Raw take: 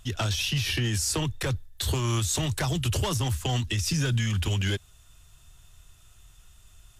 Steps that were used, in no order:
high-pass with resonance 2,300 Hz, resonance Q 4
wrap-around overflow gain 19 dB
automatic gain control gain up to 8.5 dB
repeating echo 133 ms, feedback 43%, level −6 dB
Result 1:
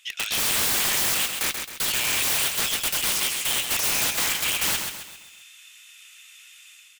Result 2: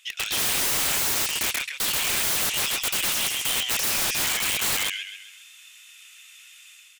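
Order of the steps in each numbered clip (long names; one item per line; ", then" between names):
automatic gain control, then high-pass with resonance, then wrap-around overflow, then repeating echo
high-pass with resonance, then automatic gain control, then repeating echo, then wrap-around overflow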